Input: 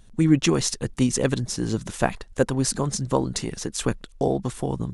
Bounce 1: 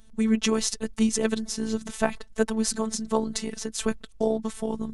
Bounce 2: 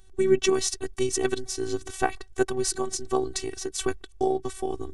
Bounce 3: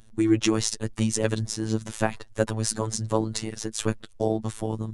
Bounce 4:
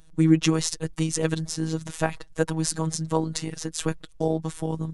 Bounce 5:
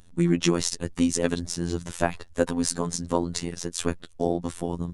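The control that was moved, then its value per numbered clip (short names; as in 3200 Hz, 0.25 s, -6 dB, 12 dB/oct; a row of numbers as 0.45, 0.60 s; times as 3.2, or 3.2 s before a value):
robotiser, frequency: 220, 380, 110, 160, 86 Hz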